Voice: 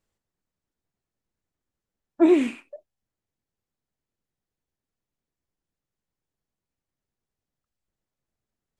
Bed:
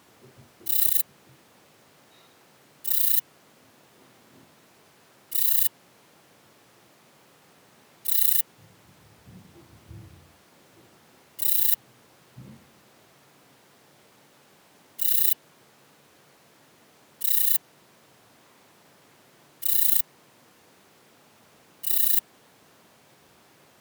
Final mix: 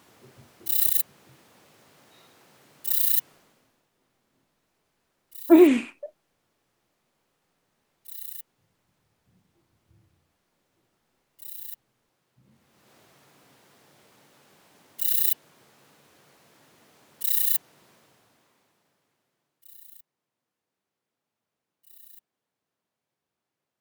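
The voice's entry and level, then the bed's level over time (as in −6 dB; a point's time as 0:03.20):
3.30 s, +3.0 dB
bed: 0:03.31 −0.5 dB
0:03.90 −17.5 dB
0:12.42 −17.5 dB
0:12.92 −1.5 dB
0:17.90 −1.5 dB
0:19.86 −29 dB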